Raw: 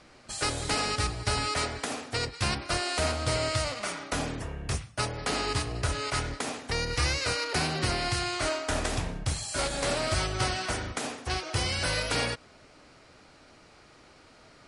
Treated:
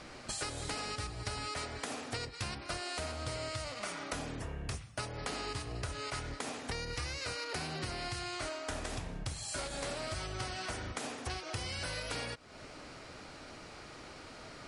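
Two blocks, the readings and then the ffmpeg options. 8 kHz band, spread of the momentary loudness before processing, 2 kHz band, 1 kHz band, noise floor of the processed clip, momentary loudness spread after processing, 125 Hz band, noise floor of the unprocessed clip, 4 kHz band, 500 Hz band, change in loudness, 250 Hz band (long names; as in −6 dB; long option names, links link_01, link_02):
−9.0 dB, 6 LU, −9.0 dB, −9.0 dB, −50 dBFS, 11 LU, −9.5 dB, −56 dBFS, −9.5 dB, −9.0 dB, −10.0 dB, −8.5 dB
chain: -af "acompressor=threshold=-43dB:ratio=6,volume=5.5dB"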